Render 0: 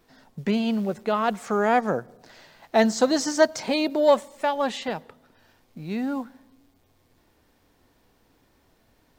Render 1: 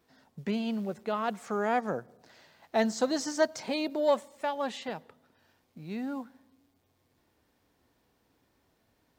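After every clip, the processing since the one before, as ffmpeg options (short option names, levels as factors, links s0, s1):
-af "highpass=53,volume=0.422"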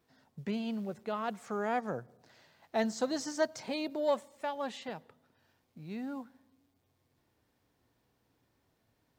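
-af "equalizer=f=120:w=2.6:g=6.5,volume=0.596"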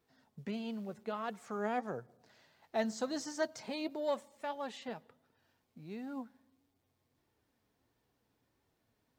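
-af "flanger=delay=2.2:depth=2.6:regen=70:speed=1.5:shape=sinusoidal,volume=1.12"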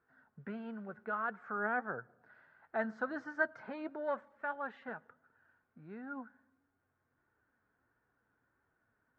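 -af "lowpass=f=1500:t=q:w=7.2,volume=0.631"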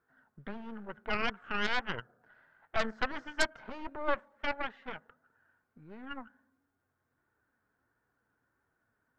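-af "aeval=exprs='0.126*(cos(1*acos(clip(val(0)/0.126,-1,1)))-cos(1*PI/2))+0.0398*(cos(8*acos(clip(val(0)/0.126,-1,1)))-cos(8*PI/2))':c=same"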